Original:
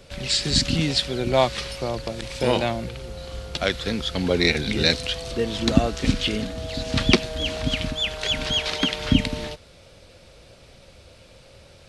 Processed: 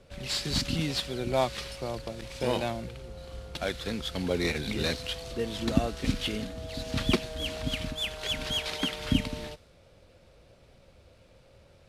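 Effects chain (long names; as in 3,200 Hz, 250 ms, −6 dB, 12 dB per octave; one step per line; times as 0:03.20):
variable-slope delta modulation 64 kbit/s
one half of a high-frequency compander decoder only
level −7 dB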